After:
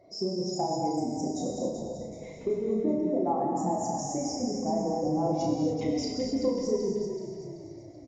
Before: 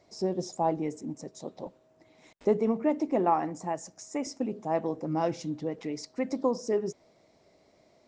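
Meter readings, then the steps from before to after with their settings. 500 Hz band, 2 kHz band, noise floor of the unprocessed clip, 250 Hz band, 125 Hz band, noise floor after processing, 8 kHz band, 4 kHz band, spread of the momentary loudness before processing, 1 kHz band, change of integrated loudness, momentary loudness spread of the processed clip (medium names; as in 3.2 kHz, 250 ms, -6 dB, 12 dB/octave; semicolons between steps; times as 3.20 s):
+1.0 dB, no reading, -64 dBFS, +3.0 dB, +3.5 dB, -45 dBFS, +6.0 dB, +7.0 dB, 13 LU, 0.0 dB, +1.0 dB, 10 LU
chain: spectral contrast enhancement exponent 1.8; compression, threshold -34 dBFS, peak gain reduction 13.5 dB; doubling 33 ms -4 dB; frequency-shifting echo 381 ms, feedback 46%, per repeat -39 Hz, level -8 dB; gated-style reverb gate 310 ms flat, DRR -1 dB; trim +4 dB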